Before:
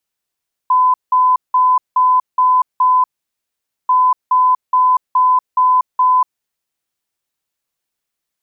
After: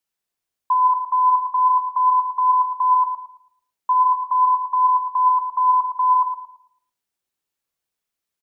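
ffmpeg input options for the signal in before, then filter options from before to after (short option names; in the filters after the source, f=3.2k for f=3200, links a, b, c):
-f lavfi -i "aevalsrc='0.376*sin(2*PI*1010*t)*clip(min(mod(mod(t,3.19),0.42),0.24-mod(mod(t,3.19),0.42))/0.005,0,1)*lt(mod(t,3.19),2.52)':d=6.38:s=44100"
-filter_complex "[0:a]bandreject=f=50:t=h:w=6,bandreject=f=100:t=h:w=6,bandreject=f=150:t=h:w=6,flanger=delay=8.9:depth=9.3:regen=74:speed=0.38:shape=triangular,asplit=2[a][b];[b]adelay=111,lowpass=f=820:p=1,volume=-4dB,asplit=2[c][d];[d]adelay=111,lowpass=f=820:p=1,volume=0.47,asplit=2[e][f];[f]adelay=111,lowpass=f=820:p=1,volume=0.47,asplit=2[g][h];[h]adelay=111,lowpass=f=820:p=1,volume=0.47,asplit=2[i][j];[j]adelay=111,lowpass=f=820:p=1,volume=0.47,asplit=2[k][l];[l]adelay=111,lowpass=f=820:p=1,volume=0.47[m];[c][e][g][i][k][m]amix=inputs=6:normalize=0[n];[a][n]amix=inputs=2:normalize=0"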